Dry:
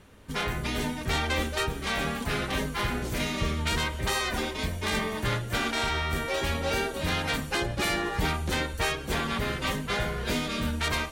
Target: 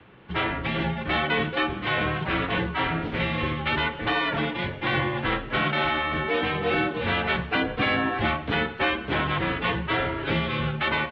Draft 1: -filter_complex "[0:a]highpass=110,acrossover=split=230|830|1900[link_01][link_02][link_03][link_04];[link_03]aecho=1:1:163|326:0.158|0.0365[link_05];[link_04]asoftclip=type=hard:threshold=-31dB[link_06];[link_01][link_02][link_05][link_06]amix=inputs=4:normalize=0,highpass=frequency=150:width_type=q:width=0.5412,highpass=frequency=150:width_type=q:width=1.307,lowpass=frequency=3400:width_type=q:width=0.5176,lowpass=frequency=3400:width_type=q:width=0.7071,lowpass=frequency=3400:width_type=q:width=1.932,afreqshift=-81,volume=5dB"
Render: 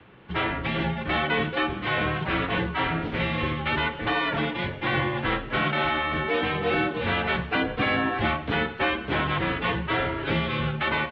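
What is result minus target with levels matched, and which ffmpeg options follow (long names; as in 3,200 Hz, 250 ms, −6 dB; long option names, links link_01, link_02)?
hard clipping: distortion +13 dB
-filter_complex "[0:a]highpass=110,acrossover=split=230|830|1900[link_01][link_02][link_03][link_04];[link_03]aecho=1:1:163|326:0.158|0.0365[link_05];[link_04]asoftclip=type=hard:threshold=-23.5dB[link_06];[link_01][link_02][link_05][link_06]amix=inputs=4:normalize=0,highpass=frequency=150:width_type=q:width=0.5412,highpass=frequency=150:width_type=q:width=1.307,lowpass=frequency=3400:width_type=q:width=0.5176,lowpass=frequency=3400:width_type=q:width=0.7071,lowpass=frequency=3400:width_type=q:width=1.932,afreqshift=-81,volume=5dB"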